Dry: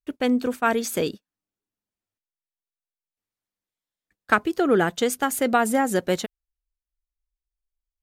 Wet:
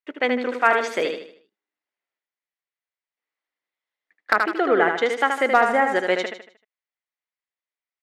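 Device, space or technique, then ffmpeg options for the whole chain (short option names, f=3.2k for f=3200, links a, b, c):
megaphone: -filter_complex "[0:a]highpass=480,lowpass=3.3k,equalizer=f=2k:t=o:w=0.26:g=9,asoftclip=type=hard:threshold=-9dB,aecho=1:1:77|154|231|308|385:0.531|0.207|0.0807|0.0315|0.0123,asettb=1/sr,asplit=3[a][b][c];[a]atrim=end=4.334[d];[b]atrim=start=4.33:end=5.96,asetpts=PTS-STARTPTS,afade=t=in:d=0.004:c=qsin,afade=t=out:st=1.626:d=0.004:c=qsin,adynamicequalizer=threshold=0.0316:dfrequency=1700:dqfactor=0.7:tfrequency=1700:tqfactor=0.7:attack=5:release=100:ratio=0.375:range=2:mode=cutabove:tftype=highshelf[e];[c]atrim=start=5.956[f];[d][e]acrossfade=d=0.004:c1=hsin:c2=qsin[g];[g][f]acrossfade=d=0.004:c1=qsin:c2=hsin,volume=4dB"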